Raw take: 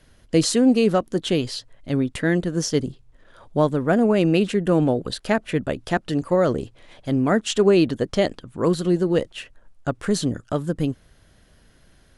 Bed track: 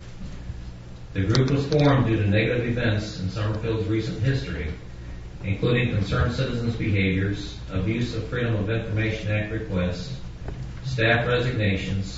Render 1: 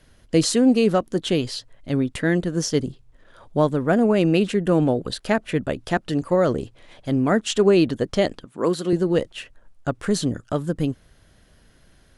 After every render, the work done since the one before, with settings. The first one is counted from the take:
0:08.45–0:08.93: high-pass filter 230 Hz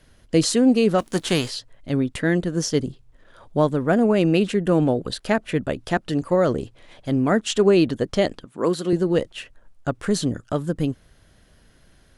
0:00.98–0:01.49: spectral envelope flattened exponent 0.6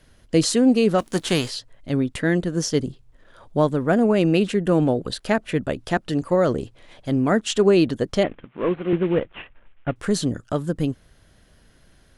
0:08.23–0:09.96: variable-slope delta modulation 16 kbit/s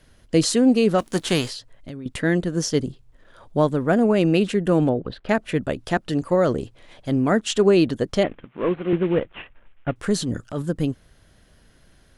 0:01.52–0:02.06: downward compressor 16 to 1, threshold −30 dBFS
0:04.89–0:05.29: high-frequency loss of the air 360 metres
0:10.16–0:10.62: transient designer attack −9 dB, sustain +4 dB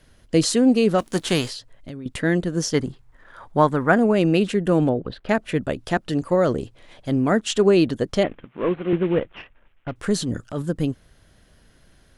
0:02.74–0:03.98: flat-topped bell 1,300 Hz +8 dB
0:09.36–0:09.95: tube saturation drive 23 dB, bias 0.5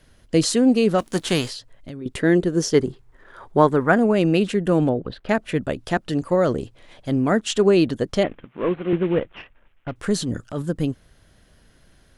0:02.01–0:03.80: parametric band 390 Hz +9.5 dB 0.45 octaves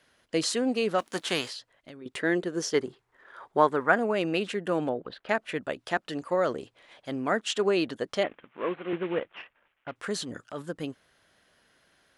high-pass filter 1,000 Hz 6 dB per octave
high-shelf EQ 4,100 Hz −9 dB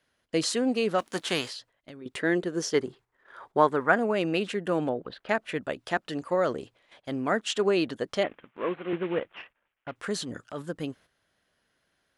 noise gate −53 dBFS, range −9 dB
low-shelf EQ 190 Hz +3.5 dB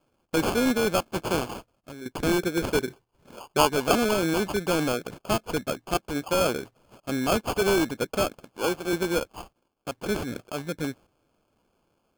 decimation without filtering 23×
in parallel at −5.5 dB: wrap-around overflow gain 20 dB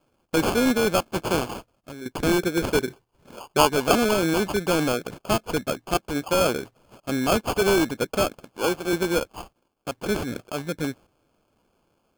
level +2.5 dB

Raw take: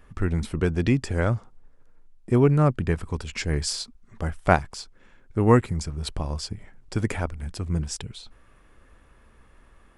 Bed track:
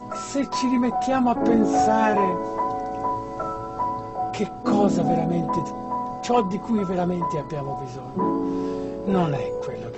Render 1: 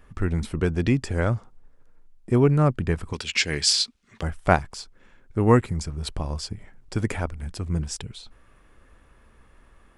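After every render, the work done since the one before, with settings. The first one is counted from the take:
0:03.13–0:04.23: meter weighting curve D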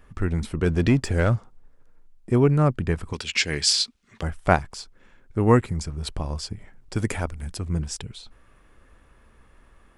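0:00.66–0:01.36: leveller curve on the samples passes 1
0:06.96–0:07.57: high-shelf EQ 5,600 Hz +7.5 dB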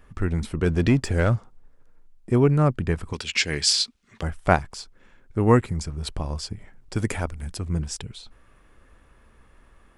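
no processing that can be heard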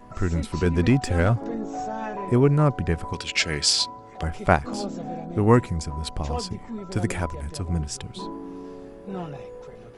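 mix in bed track −12 dB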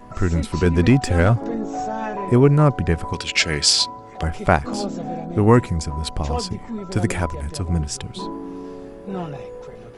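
level +4.5 dB
brickwall limiter −2 dBFS, peak gain reduction 3 dB

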